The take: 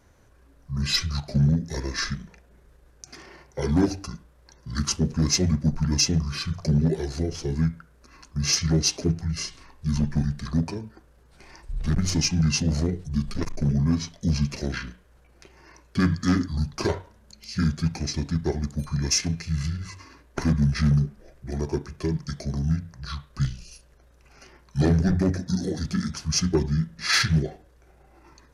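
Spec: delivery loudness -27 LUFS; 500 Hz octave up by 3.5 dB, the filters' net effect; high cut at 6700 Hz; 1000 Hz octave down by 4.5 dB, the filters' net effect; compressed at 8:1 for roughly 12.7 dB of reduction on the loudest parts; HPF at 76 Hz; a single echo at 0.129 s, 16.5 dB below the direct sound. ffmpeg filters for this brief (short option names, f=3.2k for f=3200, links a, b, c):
-af "highpass=76,lowpass=6.7k,equalizer=f=500:t=o:g=6.5,equalizer=f=1k:t=o:g=-8.5,acompressor=threshold=-29dB:ratio=8,aecho=1:1:129:0.15,volume=7.5dB"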